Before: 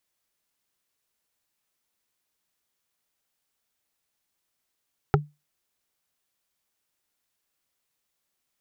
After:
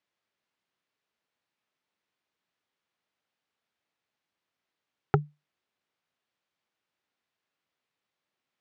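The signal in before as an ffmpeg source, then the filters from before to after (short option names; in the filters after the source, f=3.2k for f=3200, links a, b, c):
-f lavfi -i "aevalsrc='0.2*pow(10,-3*t/0.23)*sin(2*PI*148*t)+0.2*pow(10,-3*t/0.068)*sin(2*PI*408*t)+0.2*pow(10,-3*t/0.03)*sin(2*PI*799.8*t)+0.2*pow(10,-3*t/0.017)*sin(2*PI*1322.1*t)':d=0.45:s=44100"
-af "highpass=110,lowpass=3.4k"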